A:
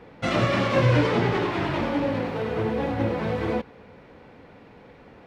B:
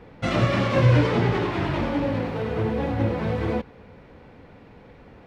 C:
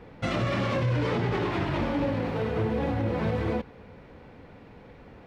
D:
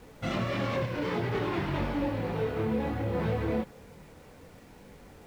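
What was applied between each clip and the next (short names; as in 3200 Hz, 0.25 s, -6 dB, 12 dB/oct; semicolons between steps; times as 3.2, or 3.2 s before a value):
low shelf 120 Hz +9.5 dB; gain -1 dB
limiter -18 dBFS, peak gain reduction 11.5 dB; gain -1 dB
chorus voices 4, 0.38 Hz, delay 24 ms, depth 3.7 ms; requantised 10-bit, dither none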